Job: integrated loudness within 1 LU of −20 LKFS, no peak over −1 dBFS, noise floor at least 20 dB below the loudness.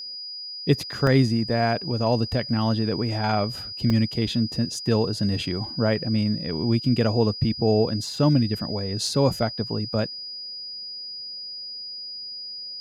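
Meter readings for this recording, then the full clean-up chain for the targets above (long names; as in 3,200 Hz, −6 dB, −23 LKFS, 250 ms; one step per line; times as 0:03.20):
number of dropouts 3; longest dropout 1.8 ms; interfering tone 4,900 Hz; level of the tone −33 dBFS; integrated loudness −24.5 LKFS; sample peak −7.0 dBFS; target loudness −20.0 LKFS
→ repair the gap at 0:01.07/0:03.90/0:09.07, 1.8 ms
notch filter 4,900 Hz, Q 30
level +4.5 dB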